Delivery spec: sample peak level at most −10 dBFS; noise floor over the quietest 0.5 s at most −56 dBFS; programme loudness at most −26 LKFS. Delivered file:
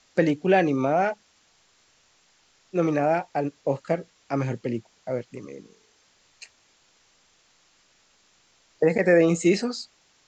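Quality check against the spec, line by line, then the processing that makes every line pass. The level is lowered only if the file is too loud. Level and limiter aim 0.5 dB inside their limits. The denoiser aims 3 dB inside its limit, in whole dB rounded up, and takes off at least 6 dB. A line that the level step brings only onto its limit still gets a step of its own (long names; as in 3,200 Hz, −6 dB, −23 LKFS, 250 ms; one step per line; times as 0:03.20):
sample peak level −7.5 dBFS: out of spec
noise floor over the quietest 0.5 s −63 dBFS: in spec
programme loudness −24.5 LKFS: out of spec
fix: level −2 dB
brickwall limiter −10.5 dBFS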